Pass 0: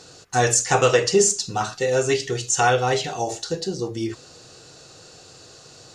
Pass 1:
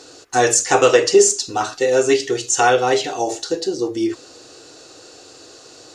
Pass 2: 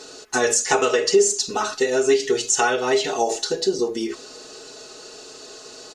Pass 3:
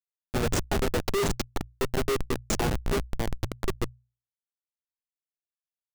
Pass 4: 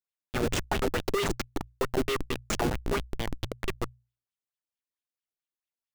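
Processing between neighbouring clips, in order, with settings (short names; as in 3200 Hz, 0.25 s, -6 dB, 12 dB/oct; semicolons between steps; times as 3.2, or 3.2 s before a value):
resonant low shelf 230 Hz -7 dB, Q 3; gain +3 dB
compressor 4:1, threshold -18 dBFS, peak gain reduction 9.5 dB; comb 4.7 ms, depth 84%
Schmitt trigger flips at -14 dBFS; notches 60/120 Hz; gain -2 dB
LFO bell 4.5 Hz 280–3400 Hz +11 dB; gain -4 dB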